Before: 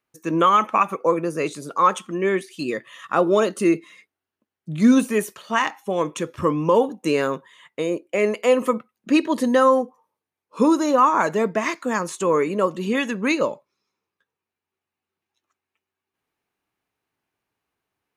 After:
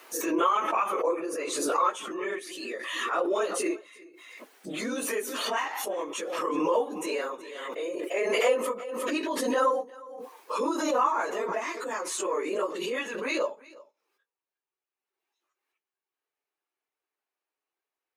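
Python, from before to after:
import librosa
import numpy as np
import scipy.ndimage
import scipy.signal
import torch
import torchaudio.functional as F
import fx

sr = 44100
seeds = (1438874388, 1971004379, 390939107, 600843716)

y = fx.phase_scramble(x, sr, seeds[0], window_ms=50)
y = scipy.signal.sosfilt(scipy.signal.butter(4, 350.0, 'highpass', fs=sr, output='sos'), y)
y = y + 10.0 ** (-22.0 / 20.0) * np.pad(y, (int(359 * sr / 1000.0), 0))[:len(y)]
y = fx.pre_swell(y, sr, db_per_s=31.0)
y = F.gain(torch.from_numpy(y), -9.0).numpy()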